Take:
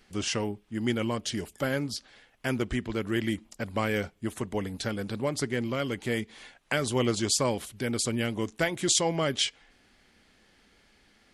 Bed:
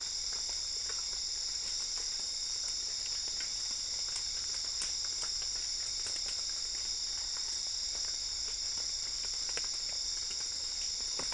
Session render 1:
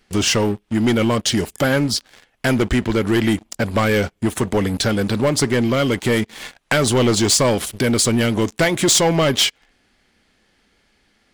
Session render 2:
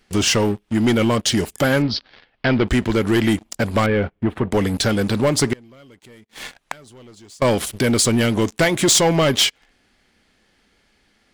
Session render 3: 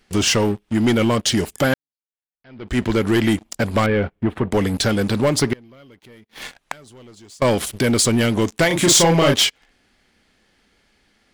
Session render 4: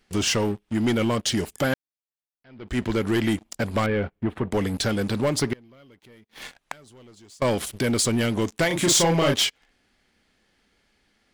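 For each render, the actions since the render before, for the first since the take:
leveller curve on the samples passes 3; in parallel at +1.5 dB: downward compressor, threshold −28 dBFS, peak gain reduction 12 dB
0:01.82–0:02.68: Butterworth low-pass 4,900 Hz 48 dB per octave; 0:03.86–0:04.52: high-frequency loss of the air 450 metres; 0:05.53–0:07.42: gate with flip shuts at −15 dBFS, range −28 dB
0:01.74–0:02.79: fade in exponential; 0:05.39–0:06.42: parametric band 7,800 Hz −9.5 dB 0.57 octaves; 0:08.67–0:09.34: double-tracking delay 35 ms −3 dB
level −5.5 dB

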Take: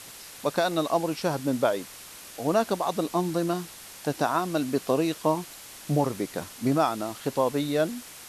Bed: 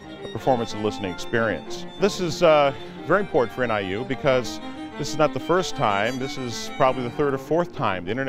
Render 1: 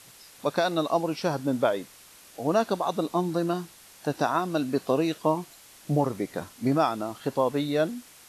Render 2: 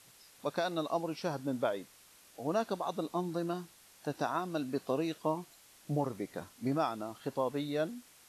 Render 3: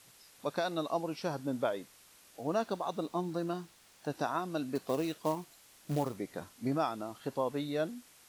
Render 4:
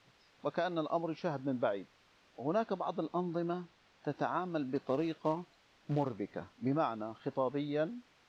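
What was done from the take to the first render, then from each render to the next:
noise reduction from a noise print 7 dB
level −8.5 dB
0:02.41–0:04.10: running median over 3 samples; 0:04.75–0:06.15: floating-point word with a short mantissa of 2 bits
high-frequency loss of the air 210 metres

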